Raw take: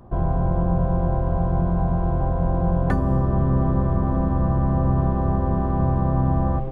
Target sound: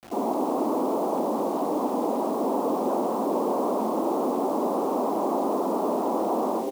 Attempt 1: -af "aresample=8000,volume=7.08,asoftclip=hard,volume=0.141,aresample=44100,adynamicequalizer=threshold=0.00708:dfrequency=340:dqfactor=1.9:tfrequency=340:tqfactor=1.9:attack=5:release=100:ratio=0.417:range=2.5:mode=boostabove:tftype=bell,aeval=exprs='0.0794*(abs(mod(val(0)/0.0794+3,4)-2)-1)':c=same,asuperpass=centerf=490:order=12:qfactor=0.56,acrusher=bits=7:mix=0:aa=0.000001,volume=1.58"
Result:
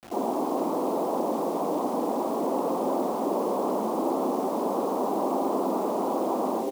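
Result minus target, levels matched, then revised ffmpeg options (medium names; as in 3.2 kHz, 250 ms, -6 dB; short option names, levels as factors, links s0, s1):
overload inside the chain: distortion +39 dB
-af "aresample=8000,volume=2.66,asoftclip=hard,volume=0.376,aresample=44100,adynamicequalizer=threshold=0.00708:dfrequency=340:dqfactor=1.9:tfrequency=340:tqfactor=1.9:attack=5:release=100:ratio=0.417:range=2.5:mode=boostabove:tftype=bell,aeval=exprs='0.0794*(abs(mod(val(0)/0.0794+3,4)-2)-1)':c=same,asuperpass=centerf=490:order=12:qfactor=0.56,acrusher=bits=7:mix=0:aa=0.000001,volume=1.58"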